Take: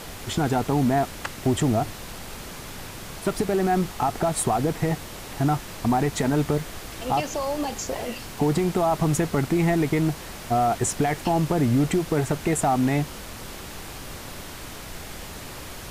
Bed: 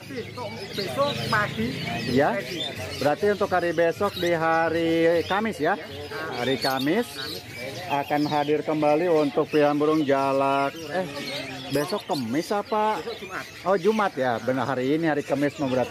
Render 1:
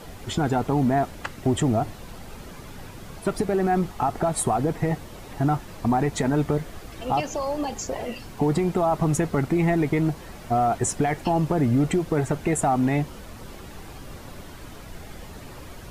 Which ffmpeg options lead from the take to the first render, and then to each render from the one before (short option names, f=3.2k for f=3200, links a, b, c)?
-af "afftdn=nr=9:nf=-38"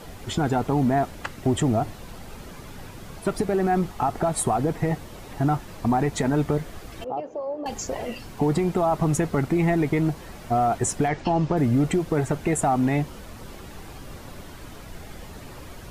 -filter_complex "[0:a]asettb=1/sr,asplit=3[a][b][c];[a]atrim=end=7.044[d];[b]atrim=start=7.04:end=7.66,asetpts=PTS-STARTPTS,afade=t=in:d=0.004:c=qsin,afade=t=out:st=0.616:d=0.004:c=qsin,bandpass=f=480:t=q:w=1.9[e];[c]atrim=start=7.656[f];[d][e]acrossfade=d=0.004:c1=hsin:c2=qsin[g];[g][f]acrossfade=d=0.004:c1=qsin:c2=hsin,asettb=1/sr,asplit=3[h][i][j];[h]atrim=end=11.084[k];[i]atrim=start=11.08:end=11.57,asetpts=PTS-STARTPTS,afade=t=in:d=0.004:c=qsin,afade=t=out:st=0.486:d=0.004:c=qsin,lowpass=f=6.5k:w=0.5412,lowpass=f=6.5k:w=1.3066[l];[j]atrim=start=11.566[m];[k][l]acrossfade=d=0.004:c1=hsin:c2=qsin[n];[n][m]acrossfade=d=0.004:c1=qsin:c2=hsin"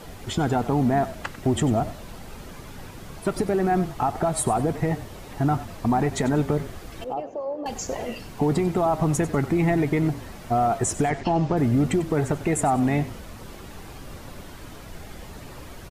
-filter_complex "[0:a]asplit=4[a][b][c][d];[b]adelay=95,afreqshift=-33,volume=-15dB[e];[c]adelay=190,afreqshift=-66,volume=-24.6dB[f];[d]adelay=285,afreqshift=-99,volume=-34.3dB[g];[a][e][f][g]amix=inputs=4:normalize=0"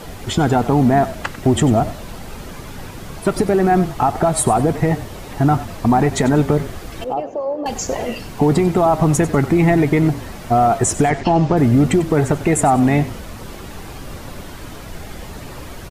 -af "volume=7.5dB"